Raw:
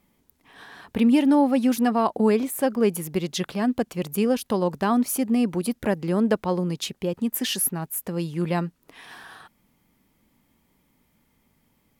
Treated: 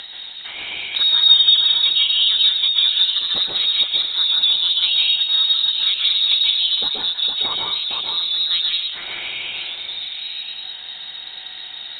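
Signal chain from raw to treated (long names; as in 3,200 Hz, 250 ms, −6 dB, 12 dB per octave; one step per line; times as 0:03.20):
elliptic high-pass filter 160 Hz, stop band 40 dB
in parallel at −8 dB: floating-point word with a short mantissa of 2 bits
on the sum: upward compression, threshold −24 dBFS
high-frequency loss of the air 160 metres
on a send: echo through a band-pass that steps 459 ms, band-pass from 2,800 Hz, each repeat −1.4 octaves, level −5 dB
on the sum: dense smooth reverb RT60 0.82 s, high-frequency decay 0.45×, pre-delay 120 ms, DRR −2.5 dB
voice inversion scrambler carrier 4,000 Hz
multiband upward and downward compressor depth 40%
level −1.5 dB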